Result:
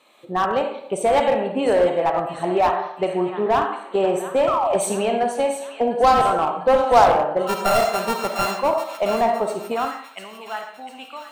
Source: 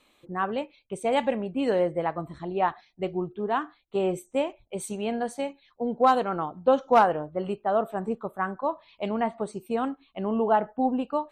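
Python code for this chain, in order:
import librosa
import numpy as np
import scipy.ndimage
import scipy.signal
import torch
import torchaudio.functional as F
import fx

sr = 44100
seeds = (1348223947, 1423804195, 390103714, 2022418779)

p1 = fx.sample_sort(x, sr, block=32, at=(7.47, 8.47))
p2 = fx.recorder_agc(p1, sr, target_db=-17.5, rise_db_per_s=15.0, max_gain_db=30)
p3 = fx.peak_eq(p2, sr, hz=91.0, db=13.0, octaves=2.3)
p4 = p3 + fx.echo_wet_highpass(p3, sr, ms=701, feedback_pct=56, hz=1500.0, wet_db=-10.0, dry=0)
p5 = fx.spec_paint(p4, sr, seeds[0], shape='fall', start_s=4.47, length_s=0.27, low_hz=520.0, high_hz=1400.0, level_db=-29.0)
p6 = fx.rev_freeverb(p5, sr, rt60_s=0.72, hf_ratio=0.8, predelay_ms=10, drr_db=4.0)
p7 = fx.filter_sweep_highpass(p6, sr, from_hz=690.0, to_hz=2200.0, start_s=9.62, end_s=10.31, q=1.1)
p8 = 10.0 ** (-21.5 / 20.0) * (np.abs((p7 / 10.0 ** (-21.5 / 20.0) + 3.0) % 4.0 - 2.0) - 1.0)
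p9 = p7 + (p8 * 10.0 ** (-4.0 / 20.0))
y = fx.low_shelf(p9, sr, hz=400.0, db=12.0)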